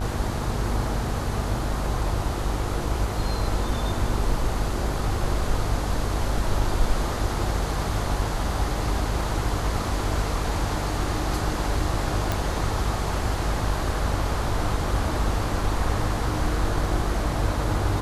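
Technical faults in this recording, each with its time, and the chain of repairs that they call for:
buzz 50 Hz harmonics 31 -29 dBFS
12.32 pop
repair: de-click; de-hum 50 Hz, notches 31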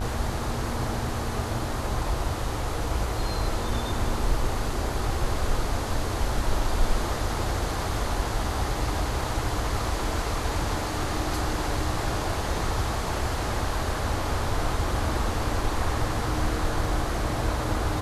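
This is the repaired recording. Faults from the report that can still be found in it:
none

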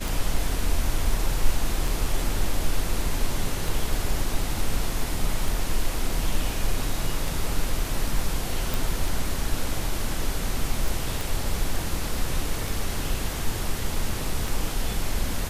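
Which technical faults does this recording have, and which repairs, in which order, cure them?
tick 33 1/3 rpm
8.74 pop
11.21 pop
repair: de-click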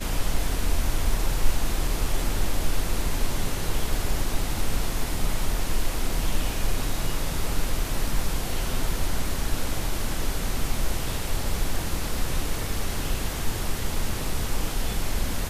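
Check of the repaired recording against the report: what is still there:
11.21 pop

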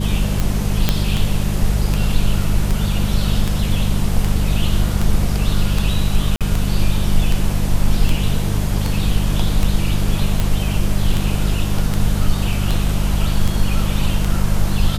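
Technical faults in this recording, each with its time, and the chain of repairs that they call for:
hum 50 Hz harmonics 4 -20 dBFS
tick 78 rpm
0.89 pop 0 dBFS
6.36–6.41 gap 47 ms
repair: de-click; de-hum 50 Hz, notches 4; interpolate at 6.36, 47 ms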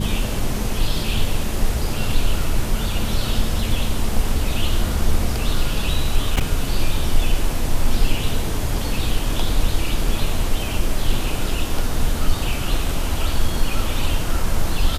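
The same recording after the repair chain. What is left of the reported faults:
none

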